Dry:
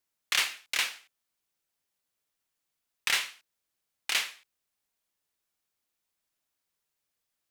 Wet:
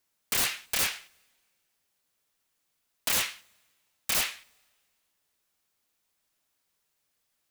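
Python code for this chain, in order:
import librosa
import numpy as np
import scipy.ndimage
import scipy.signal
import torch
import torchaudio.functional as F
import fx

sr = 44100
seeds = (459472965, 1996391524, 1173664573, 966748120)

y = (np.mod(10.0 ** (26.0 / 20.0) * x + 1.0, 2.0) - 1.0) / 10.0 ** (26.0 / 20.0)
y = fx.rev_double_slope(y, sr, seeds[0], early_s=0.33, late_s=1.8, knee_db=-18, drr_db=17.5)
y = F.gain(torch.from_numpy(y), 6.0).numpy()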